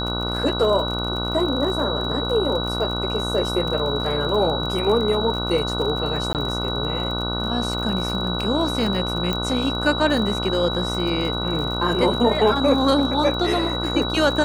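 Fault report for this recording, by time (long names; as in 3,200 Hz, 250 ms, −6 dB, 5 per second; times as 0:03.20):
mains buzz 60 Hz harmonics 25 −27 dBFS
surface crackle 42 per second −28 dBFS
whistle 3,900 Hz −27 dBFS
0:06.33–0:06.35: drop-out 18 ms
0:09.33: click −10 dBFS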